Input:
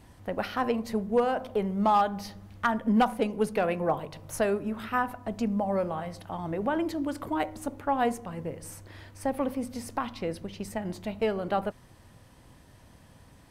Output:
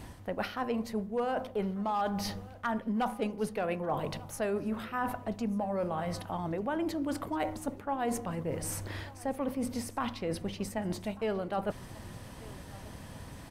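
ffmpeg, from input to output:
-af "areverse,acompressor=threshold=-41dB:ratio=4,areverse,aecho=1:1:1191|2382|3573:0.0891|0.0321|0.0116,volume=8.5dB"

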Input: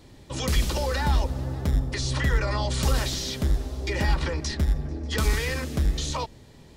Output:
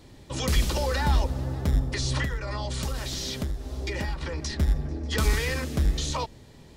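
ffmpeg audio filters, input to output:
-filter_complex "[0:a]asettb=1/sr,asplit=3[a][b][c];[a]atrim=end=2.234[d];[b]atrim=start=2.23:end=4.6,asetpts=PTS-STARTPTS,afade=t=in:d=0.004:c=qsin,afade=t=out:st=2.366:d=0.004:c=qsin,acompressor=threshold=-27dB:ratio=6[e];[c]atrim=start=4.596[f];[d][e]acrossfade=d=0.004:c1=hsin:c2=qsin[g];[g][f]acrossfade=d=0.004:c1=qsin:c2=hsin"

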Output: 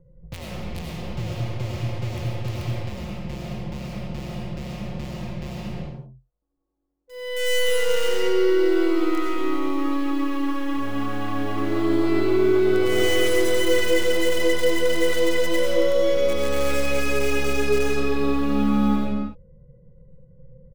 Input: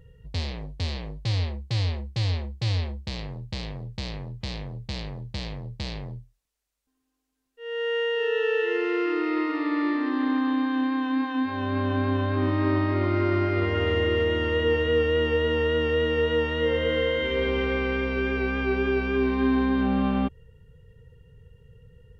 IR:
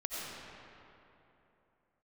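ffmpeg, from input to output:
-filter_complex "[0:a]highshelf=f=3.6k:t=q:w=1.5:g=-11,aecho=1:1:6:0.65,asetrate=47187,aresample=44100,acrossover=split=360|990[a][b][c];[c]acrusher=bits=5:dc=4:mix=0:aa=0.000001[d];[a][b][d]amix=inputs=3:normalize=0[e];[1:a]atrim=start_sample=2205,afade=t=out:st=0.44:d=0.01,atrim=end_sample=19845[f];[e][f]afir=irnorm=-1:irlink=0"

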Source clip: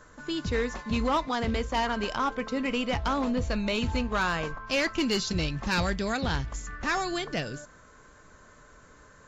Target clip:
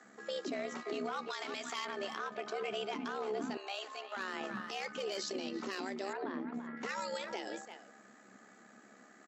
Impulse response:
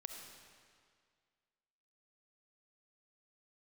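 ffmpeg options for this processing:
-filter_complex "[0:a]asettb=1/sr,asplit=3[a][b][c];[a]atrim=end=1.304[d];[b]atrim=start=1.3:end=1.85,asetpts=PTS-STARTPTS,afade=t=in:d=0.004:c=qsin,afade=t=out:st=0.546:d=0.004:c=qsin,tiltshelf=f=910:g=-9[e];[c]atrim=start=1.846[f];[d][e]acrossfade=d=0.004:c1=hsin:c2=qsin[g];[g][f]acrossfade=d=0.004:c1=qsin:c2=hsin,asplit=2[h][i];[i]adelay=340,highpass=300,lowpass=3.4k,asoftclip=type=hard:threshold=-20.5dB,volume=-13dB[j];[h][j]amix=inputs=2:normalize=0,afreqshift=190,asettb=1/sr,asplit=3[k][l][m];[k]atrim=end=6.134[n];[l]atrim=start=6.13:end=6.77,asetpts=PTS-STARTPTS,afade=t=in:d=0.004:c=qsin,afade=t=out:st=0.636:d=0.004:c=qsin,lowpass=1.6k[o];[m]atrim=start=6.766[p];[n][o]acrossfade=d=0.004:c1=hsin:c2=qsin[q];[q][p]acrossfade=d=0.004:c1=qsin:c2=hsin,alimiter=level_in=0.5dB:limit=-24dB:level=0:latency=1:release=102,volume=-0.5dB,asettb=1/sr,asplit=3[r][s][t];[r]atrim=end=3.574[u];[s]atrim=start=3.57:end=4.17,asetpts=PTS-STARTPTS,afade=t=in:d=0.004:c=qsin,afade=t=out:st=0.596:d=0.004:c=qsin,highpass=f=600:w=0.5412,highpass=f=600:w=1.3066[v];[t]atrim=start=4.166[w];[u][v]acrossfade=d=0.004:c1=hsin:c2=qsin[x];[x][w]acrossfade=d=0.004:c1=qsin:c2=hsin,tremolo=f=69:d=0.462,volume=-3.5dB"

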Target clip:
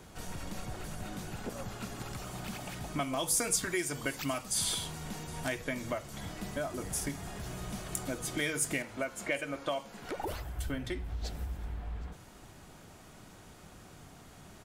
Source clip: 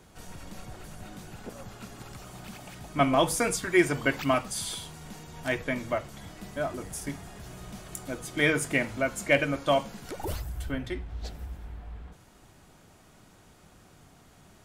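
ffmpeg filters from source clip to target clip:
-filter_complex "[0:a]asettb=1/sr,asplit=3[a][b][c];[a]atrim=end=8.824[d];[b]atrim=start=8.82:end=10.59,asetpts=PTS-STARTPTS,afade=t=in:d=0.004:c=qsin,afade=t=out:st=1.766:d=0.004:c=qsin,bass=f=250:g=-8,treble=f=4k:g=-10[e];[c]atrim=start=10.586[f];[d][e]acrossfade=d=0.004:c1=hsin:c2=qsin[g];[g][f]acrossfade=d=0.004:c1=qsin:c2=hsin,acrossover=split=4500[h][i];[h]acompressor=threshold=-36dB:ratio=5[j];[i]aecho=1:1:766:0.0944[k];[j][k]amix=inputs=2:normalize=0,volume=3dB"

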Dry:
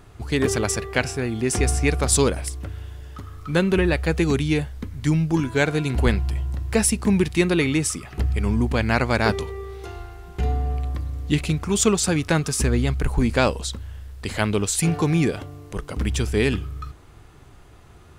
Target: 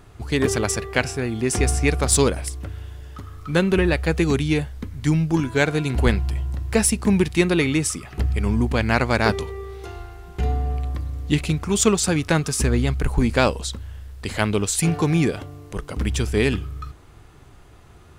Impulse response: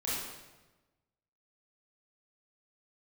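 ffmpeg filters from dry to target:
-af "aeval=exprs='0.631*(cos(1*acos(clip(val(0)/0.631,-1,1)))-cos(1*PI/2))+0.1*(cos(3*acos(clip(val(0)/0.631,-1,1)))-cos(3*PI/2))':c=same,acontrast=73,volume=-1dB"

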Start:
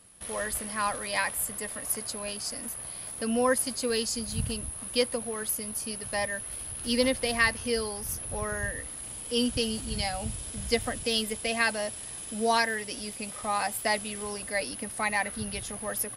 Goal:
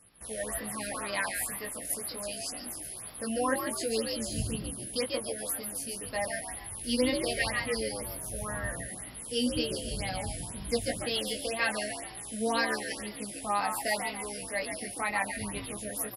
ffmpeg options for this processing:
-filter_complex "[0:a]flanger=delay=18:depth=3.1:speed=0.24,asplit=6[a][b][c][d][e][f];[b]adelay=140,afreqshift=66,volume=-6.5dB[g];[c]adelay=280,afreqshift=132,volume=-13.8dB[h];[d]adelay=420,afreqshift=198,volume=-21.2dB[i];[e]adelay=560,afreqshift=264,volume=-28.5dB[j];[f]adelay=700,afreqshift=330,volume=-35.8dB[k];[a][g][h][i][j][k]amix=inputs=6:normalize=0,afftfilt=real='re*(1-between(b*sr/1024,980*pow(8000/980,0.5+0.5*sin(2*PI*2*pts/sr))/1.41,980*pow(8000/980,0.5+0.5*sin(2*PI*2*pts/sr))*1.41))':imag='im*(1-between(b*sr/1024,980*pow(8000/980,0.5+0.5*sin(2*PI*2*pts/sr))/1.41,980*pow(8000/980,0.5+0.5*sin(2*PI*2*pts/sr))*1.41))':win_size=1024:overlap=0.75"

